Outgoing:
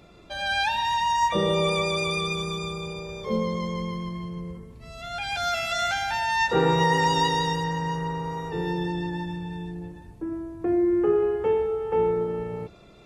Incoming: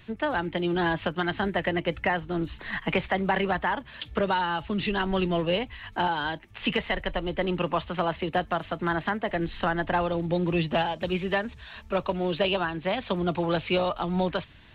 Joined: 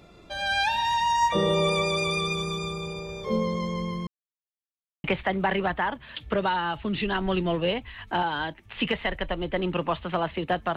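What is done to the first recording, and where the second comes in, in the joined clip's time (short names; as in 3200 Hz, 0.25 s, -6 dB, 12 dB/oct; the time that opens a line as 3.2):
outgoing
4.07–5.04 mute
5.04 switch to incoming from 2.89 s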